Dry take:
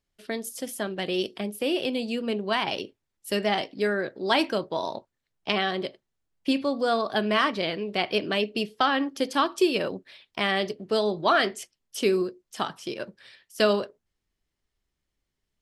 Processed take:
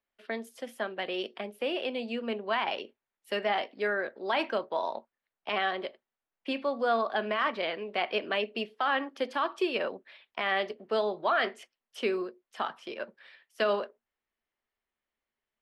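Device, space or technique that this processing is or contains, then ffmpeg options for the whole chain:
DJ mixer with the lows and highs turned down: -filter_complex "[0:a]acrossover=split=440 3100:gain=0.112 1 0.112[s0][s1][s2];[s0][s1][s2]amix=inputs=3:normalize=0,alimiter=limit=0.126:level=0:latency=1:release=20,equalizer=f=230:w=6.5:g=11"

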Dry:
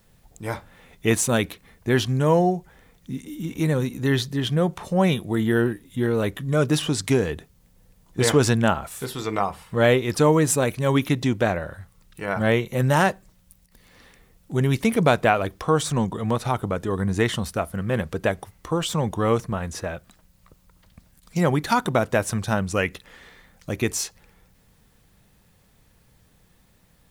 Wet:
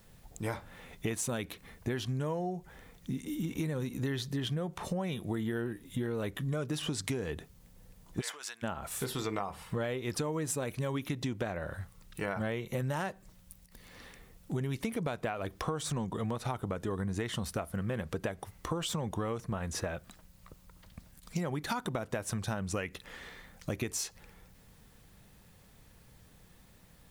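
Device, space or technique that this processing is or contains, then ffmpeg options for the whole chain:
serial compression, leveller first: -filter_complex "[0:a]acompressor=threshold=0.0891:ratio=2.5,acompressor=threshold=0.0251:ratio=5,asplit=3[s0][s1][s2];[s0]afade=t=out:st=8.2:d=0.02[s3];[s1]highpass=1300,afade=t=in:st=8.2:d=0.02,afade=t=out:st=8.62:d=0.02[s4];[s2]afade=t=in:st=8.62:d=0.02[s5];[s3][s4][s5]amix=inputs=3:normalize=0"

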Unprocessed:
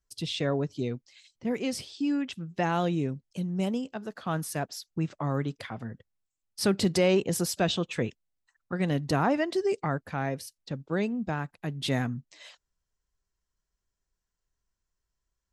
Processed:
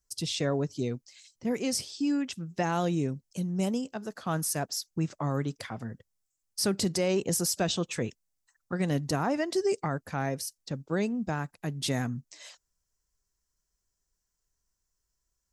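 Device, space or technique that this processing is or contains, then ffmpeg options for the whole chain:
over-bright horn tweeter: -af "highshelf=f=4500:t=q:w=1.5:g=6.5,alimiter=limit=0.119:level=0:latency=1:release=143"

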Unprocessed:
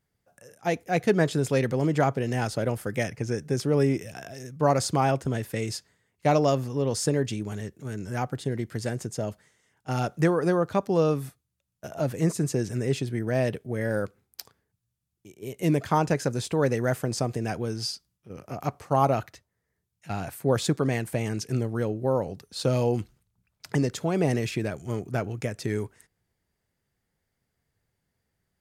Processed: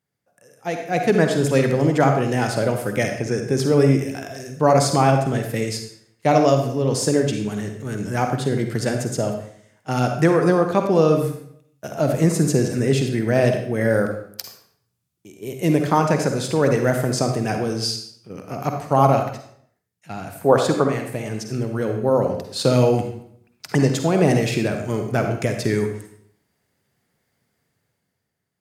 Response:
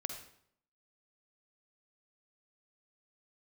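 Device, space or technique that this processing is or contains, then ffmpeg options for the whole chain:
far laptop microphone: -filter_complex "[0:a]asettb=1/sr,asplit=3[s0][s1][s2];[s0]atrim=end=20.414[s3];[s1]atrim=start=20.41:end=20.88,asetpts=PTS-STARTPTS,afade=t=in:d=0.004:c=qsin,afade=t=out:st=0.466:d=0.004:c=qsin,equalizer=f=830:w=0.57:g=14[s4];[s2]atrim=start=20.876[s5];[s3][s4]acrossfade=d=0.004:c1=hsin:c2=qsin[s6];[s6][s5]acrossfade=d=0.004:c1=qsin:c2=hsin[s7];[1:a]atrim=start_sample=2205[s8];[s7][s8]afir=irnorm=-1:irlink=0,highpass=120,dynaudnorm=f=170:g=11:m=3.55,volume=0.891"

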